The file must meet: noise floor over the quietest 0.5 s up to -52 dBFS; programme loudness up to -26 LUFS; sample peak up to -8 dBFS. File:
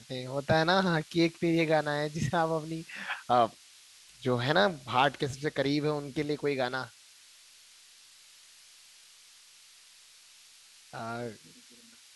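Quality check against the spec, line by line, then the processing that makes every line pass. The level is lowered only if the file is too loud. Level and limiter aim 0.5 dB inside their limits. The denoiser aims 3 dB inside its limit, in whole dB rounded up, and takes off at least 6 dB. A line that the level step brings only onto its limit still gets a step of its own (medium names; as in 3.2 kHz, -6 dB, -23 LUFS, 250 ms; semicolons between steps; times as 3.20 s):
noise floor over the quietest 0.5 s -57 dBFS: pass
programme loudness -29.5 LUFS: pass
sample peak -11.0 dBFS: pass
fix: none needed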